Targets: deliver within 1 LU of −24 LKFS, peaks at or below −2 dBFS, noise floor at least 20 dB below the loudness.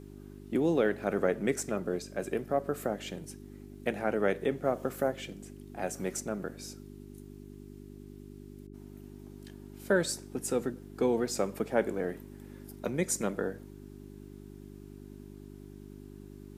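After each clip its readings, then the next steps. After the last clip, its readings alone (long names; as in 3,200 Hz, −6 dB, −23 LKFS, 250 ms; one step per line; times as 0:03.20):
mains hum 50 Hz; hum harmonics up to 400 Hz; level of the hum −46 dBFS; integrated loudness −32.5 LKFS; sample peak −12.5 dBFS; target loudness −24.0 LKFS
→ hum removal 50 Hz, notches 8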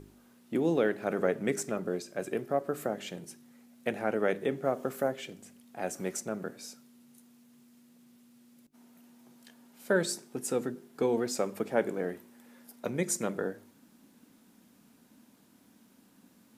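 mains hum none found; integrated loudness −32.5 LKFS; sample peak −13.0 dBFS; target loudness −24.0 LKFS
→ level +8.5 dB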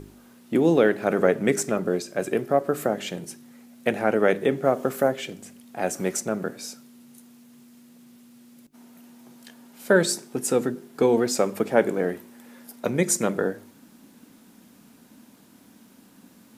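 integrated loudness −24.0 LKFS; sample peak −4.5 dBFS; background noise floor −54 dBFS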